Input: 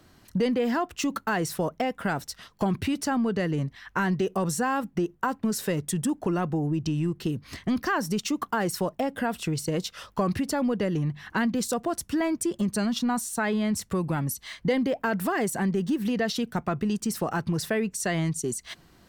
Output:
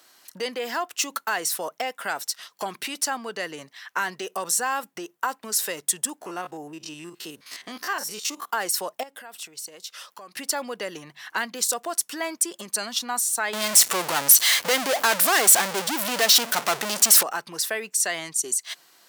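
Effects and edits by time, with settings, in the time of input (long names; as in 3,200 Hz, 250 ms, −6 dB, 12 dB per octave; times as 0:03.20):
0:06.21–0:08.52: spectrum averaged block by block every 50 ms
0:09.03–0:10.37: downward compressor 3 to 1, threshold −42 dBFS
0:13.53–0:17.23: power curve on the samples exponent 0.35
whole clip: high-pass filter 610 Hz 12 dB per octave; high-shelf EQ 3,600 Hz +10.5 dB; level +1 dB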